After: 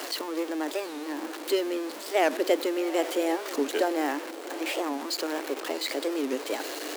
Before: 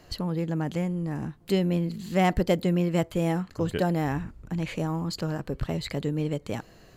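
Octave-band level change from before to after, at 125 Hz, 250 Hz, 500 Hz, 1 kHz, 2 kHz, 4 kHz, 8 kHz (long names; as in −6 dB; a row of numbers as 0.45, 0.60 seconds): below −40 dB, −3.5 dB, +2.0 dB, +1.0 dB, +3.5 dB, +5.0 dB, +7.5 dB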